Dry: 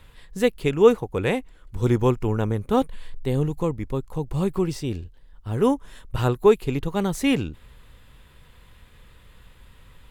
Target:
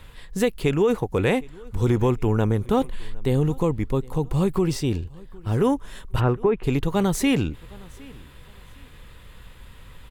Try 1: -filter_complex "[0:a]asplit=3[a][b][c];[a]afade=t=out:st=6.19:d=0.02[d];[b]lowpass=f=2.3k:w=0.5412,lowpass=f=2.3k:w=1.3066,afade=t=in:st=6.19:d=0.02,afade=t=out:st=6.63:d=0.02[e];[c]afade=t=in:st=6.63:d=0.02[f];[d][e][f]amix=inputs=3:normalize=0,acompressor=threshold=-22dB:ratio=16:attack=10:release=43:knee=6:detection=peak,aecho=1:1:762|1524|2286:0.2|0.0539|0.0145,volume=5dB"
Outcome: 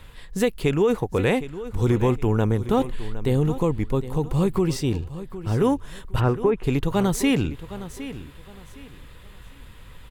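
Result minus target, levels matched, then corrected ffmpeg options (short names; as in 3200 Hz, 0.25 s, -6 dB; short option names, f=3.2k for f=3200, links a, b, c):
echo-to-direct +10 dB
-filter_complex "[0:a]asplit=3[a][b][c];[a]afade=t=out:st=6.19:d=0.02[d];[b]lowpass=f=2.3k:w=0.5412,lowpass=f=2.3k:w=1.3066,afade=t=in:st=6.19:d=0.02,afade=t=out:st=6.63:d=0.02[e];[c]afade=t=in:st=6.63:d=0.02[f];[d][e][f]amix=inputs=3:normalize=0,acompressor=threshold=-22dB:ratio=16:attack=10:release=43:knee=6:detection=peak,aecho=1:1:762|1524:0.0631|0.017,volume=5dB"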